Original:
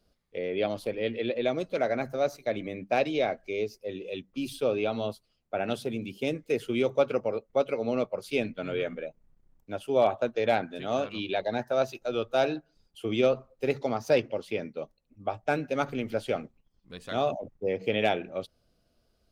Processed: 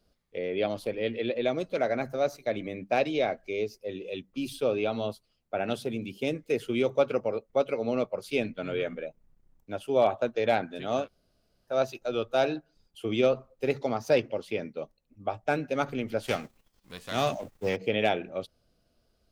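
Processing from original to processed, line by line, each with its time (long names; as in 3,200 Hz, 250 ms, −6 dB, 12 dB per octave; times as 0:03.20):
0:11.04–0:11.71: fill with room tone, crossfade 0.10 s
0:16.22–0:17.75: spectral envelope flattened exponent 0.6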